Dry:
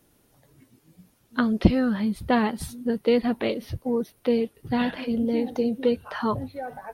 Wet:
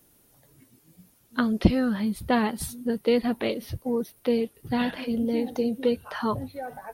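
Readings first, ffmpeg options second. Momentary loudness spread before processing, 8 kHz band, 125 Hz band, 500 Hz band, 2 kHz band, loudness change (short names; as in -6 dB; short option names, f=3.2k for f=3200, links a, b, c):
9 LU, +4.5 dB, -1.5 dB, -1.5 dB, -1.0 dB, -1.5 dB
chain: -af "highshelf=f=7k:g=9.5,volume=-1.5dB"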